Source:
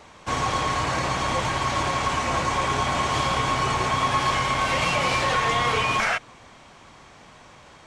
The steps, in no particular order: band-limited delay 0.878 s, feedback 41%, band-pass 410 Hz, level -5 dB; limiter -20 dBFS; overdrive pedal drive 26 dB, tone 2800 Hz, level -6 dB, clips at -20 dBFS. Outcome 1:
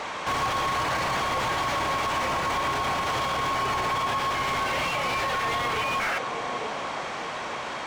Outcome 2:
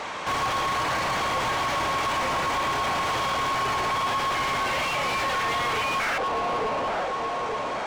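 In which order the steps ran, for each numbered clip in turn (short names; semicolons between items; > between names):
overdrive pedal > band-limited delay > limiter; band-limited delay > limiter > overdrive pedal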